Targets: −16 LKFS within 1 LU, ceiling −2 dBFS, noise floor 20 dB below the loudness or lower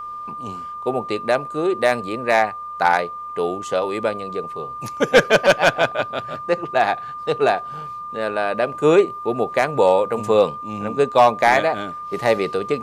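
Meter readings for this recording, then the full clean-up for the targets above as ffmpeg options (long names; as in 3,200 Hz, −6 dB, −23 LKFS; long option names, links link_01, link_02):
interfering tone 1,200 Hz; level of the tone −29 dBFS; integrated loudness −19.5 LKFS; sample peak −4.5 dBFS; target loudness −16.0 LKFS
→ -af "bandreject=frequency=1200:width=30"
-af "volume=3.5dB,alimiter=limit=-2dB:level=0:latency=1"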